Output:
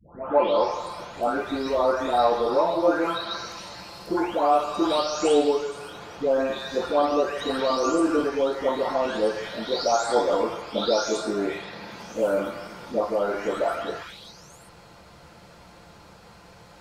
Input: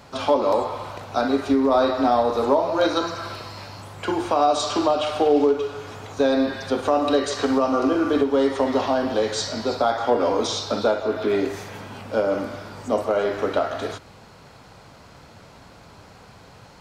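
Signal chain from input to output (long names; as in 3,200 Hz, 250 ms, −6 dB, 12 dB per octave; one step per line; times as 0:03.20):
every frequency bin delayed by itself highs late, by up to 710 ms
mains-hum notches 50/100/150 Hz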